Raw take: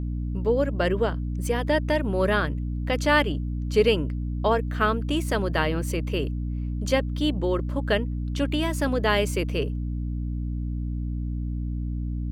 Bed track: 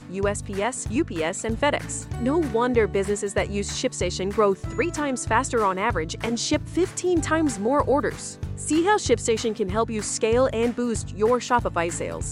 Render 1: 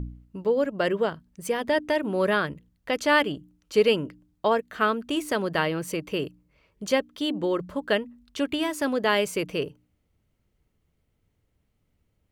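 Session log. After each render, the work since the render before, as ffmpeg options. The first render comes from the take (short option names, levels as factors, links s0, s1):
-af "bandreject=f=60:t=h:w=4,bandreject=f=120:t=h:w=4,bandreject=f=180:t=h:w=4,bandreject=f=240:t=h:w=4,bandreject=f=300:t=h:w=4"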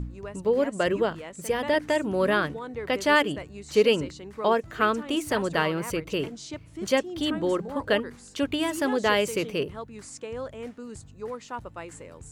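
-filter_complex "[1:a]volume=0.178[s0];[0:a][s0]amix=inputs=2:normalize=0"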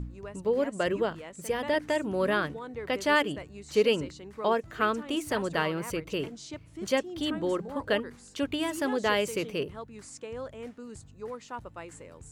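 -af "volume=0.668"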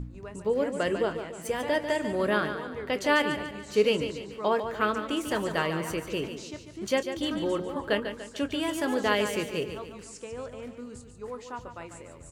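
-filter_complex "[0:a]asplit=2[s0][s1];[s1]adelay=24,volume=0.224[s2];[s0][s2]amix=inputs=2:normalize=0,aecho=1:1:145|290|435|580|725:0.355|0.163|0.0751|0.0345|0.0159"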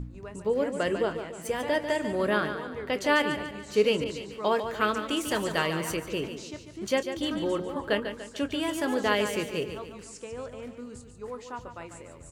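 -filter_complex "[0:a]asettb=1/sr,asplit=3[s0][s1][s2];[s0]atrim=end=4.044[s3];[s1]atrim=start=4.04:end=5.97,asetpts=PTS-STARTPTS,afade=t=in:d=0.004:c=qsin,afade=t=out:st=1.926:d=0.004:c=qsin,adynamicequalizer=threshold=0.00794:dfrequency=2300:dqfactor=0.7:tfrequency=2300:tqfactor=0.7:attack=5:release=100:ratio=0.375:range=2.5:mode=boostabove:tftype=highshelf[s4];[s2]atrim=start=5.966[s5];[s3][s4]acrossfade=d=0.004:c1=hsin:c2=qsin[s6];[s6][s5]acrossfade=d=0.004:c1=qsin:c2=hsin"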